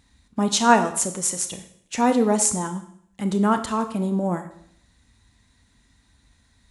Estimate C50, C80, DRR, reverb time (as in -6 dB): 11.0 dB, 14.0 dB, 8.0 dB, 0.65 s